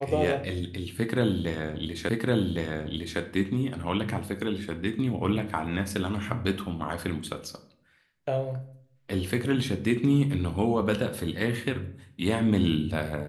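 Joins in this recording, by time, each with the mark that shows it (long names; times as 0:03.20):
0:02.09: the same again, the last 1.11 s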